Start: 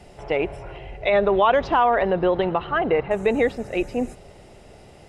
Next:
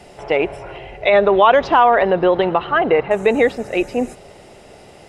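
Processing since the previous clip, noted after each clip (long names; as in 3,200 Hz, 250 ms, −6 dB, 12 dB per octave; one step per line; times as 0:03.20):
low-shelf EQ 140 Hz −11 dB
level +6.5 dB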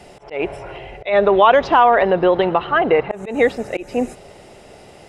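volume swells 171 ms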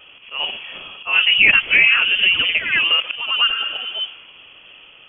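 delay with pitch and tempo change per echo 84 ms, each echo +1 semitone, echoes 2, each echo −6 dB
healed spectral selection 0:03.52–0:04.30, 420–2,400 Hz both
voice inversion scrambler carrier 3,300 Hz
level −2.5 dB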